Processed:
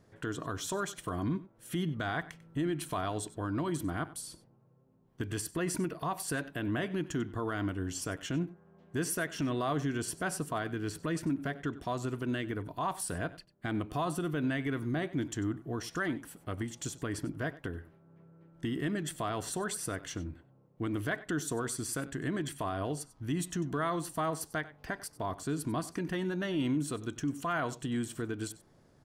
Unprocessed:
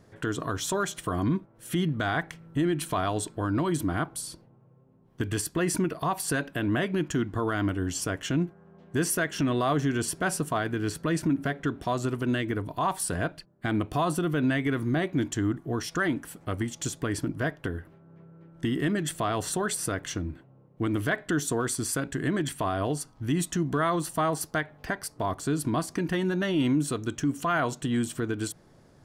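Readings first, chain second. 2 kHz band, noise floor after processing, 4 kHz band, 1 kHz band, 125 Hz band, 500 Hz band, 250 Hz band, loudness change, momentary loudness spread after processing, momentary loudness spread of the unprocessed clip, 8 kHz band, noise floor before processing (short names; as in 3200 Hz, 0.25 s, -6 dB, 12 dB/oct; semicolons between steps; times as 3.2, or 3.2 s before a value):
-6.5 dB, -64 dBFS, -6.5 dB, -6.5 dB, -6.5 dB, -6.5 dB, -6.5 dB, -6.5 dB, 6 LU, 6 LU, -6.5 dB, -57 dBFS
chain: echo 95 ms -18 dB; gain -6.5 dB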